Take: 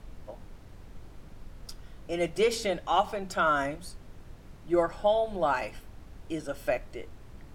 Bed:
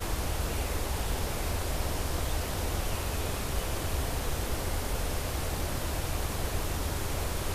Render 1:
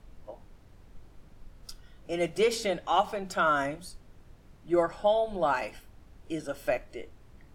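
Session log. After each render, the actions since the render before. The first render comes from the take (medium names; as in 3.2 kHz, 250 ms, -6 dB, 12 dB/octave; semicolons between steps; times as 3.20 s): noise print and reduce 6 dB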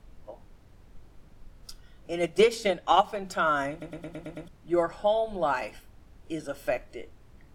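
2.23–3.17 s: transient shaper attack +8 dB, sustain -3 dB; 3.71 s: stutter in place 0.11 s, 7 plays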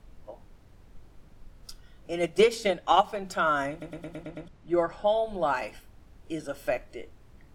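4.23–5.08 s: distance through air 51 m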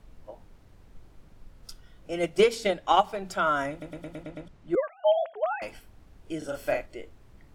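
4.75–5.62 s: formants replaced by sine waves; 6.38–6.86 s: doubling 37 ms -3 dB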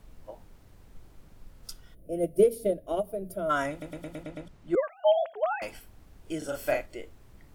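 1.94–3.50 s: time-frequency box 700–9000 Hz -21 dB; treble shelf 8.7 kHz +9.5 dB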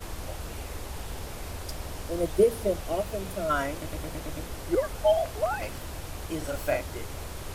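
add bed -6 dB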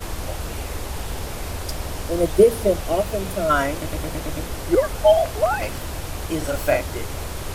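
trim +8 dB; peak limiter -3 dBFS, peak gain reduction 1 dB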